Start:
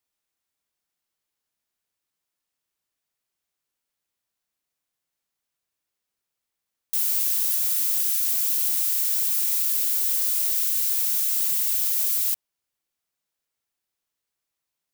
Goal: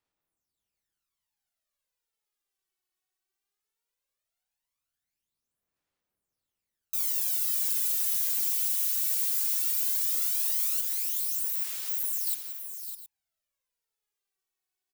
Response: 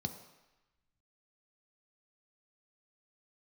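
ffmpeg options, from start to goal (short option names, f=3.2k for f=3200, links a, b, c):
-filter_complex "[0:a]asettb=1/sr,asplit=3[a][b][c];[a]atrim=end=10.814[d];[b]atrim=start=10.81:end=12.27,asetpts=PTS-STARTPTS,afade=t=in:d=0.004:c=qsin,afade=t=out:st=1.456:d=0.004:c=qsin,agate=range=-33dB:threshold=-19dB:ratio=3:detection=peak[e];[c]atrim=start=12.266[f];[d][e]acrossfade=d=0.004:c1=hsin:c2=qsin[g];[g][f]acrossfade=d=0.004:c1=qsin:c2=hsin,asoftclip=type=tanh:threshold=-12dB,aphaser=in_gain=1:out_gain=1:delay=2.7:decay=0.75:speed=0.17:type=sinusoidal,asplit=2[h][i];[i]aecho=0:1:82|179|560|605|716:0.224|0.251|0.211|0.316|0.141[j];[h][j]amix=inputs=2:normalize=0,volume=-8.5dB"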